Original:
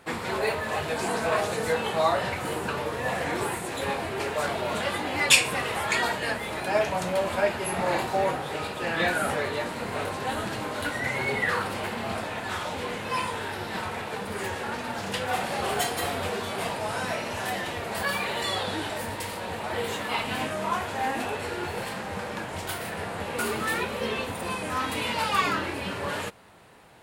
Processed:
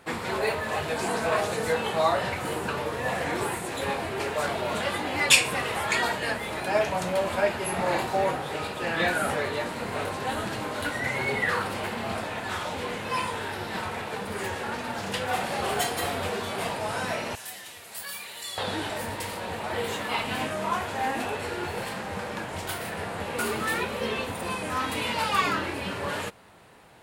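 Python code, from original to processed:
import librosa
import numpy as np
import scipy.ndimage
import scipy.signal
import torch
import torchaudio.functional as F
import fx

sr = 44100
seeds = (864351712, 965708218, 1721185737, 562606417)

y = fx.pre_emphasis(x, sr, coefficient=0.9, at=(17.35, 18.58))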